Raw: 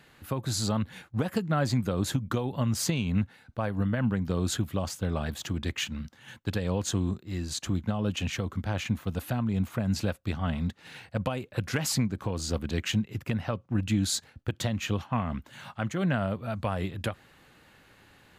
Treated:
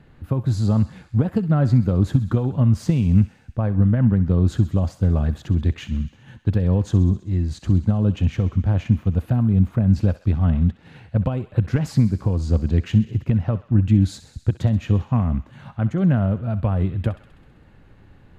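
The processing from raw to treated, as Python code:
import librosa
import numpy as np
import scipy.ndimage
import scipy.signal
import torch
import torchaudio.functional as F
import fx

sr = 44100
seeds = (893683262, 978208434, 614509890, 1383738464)

p1 = fx.tilt_eq(x, sr, slope=-4.0)
y = p1 + fx.echo_thinned(p1, sr, ms=65, feedback_pct=75, hz=1000.0, wet_db=-13, dry=0)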